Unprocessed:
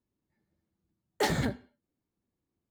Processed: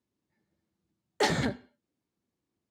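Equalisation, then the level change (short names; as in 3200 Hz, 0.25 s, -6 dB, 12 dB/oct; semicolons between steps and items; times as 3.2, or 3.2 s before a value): HPF 130 Hz 6 dB/oct; air absorption 66 m; high shelf 4100 Hz +6.5 dB; +2.0 dB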